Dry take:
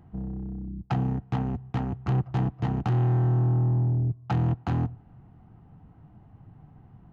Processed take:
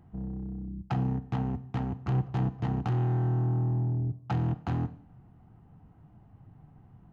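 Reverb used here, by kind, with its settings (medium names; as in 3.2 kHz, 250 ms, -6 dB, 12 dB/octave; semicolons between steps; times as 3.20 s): Schroeder reverb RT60 0.56 s, combs from 31 ms, DRR 14 dB; trim -3.5 dB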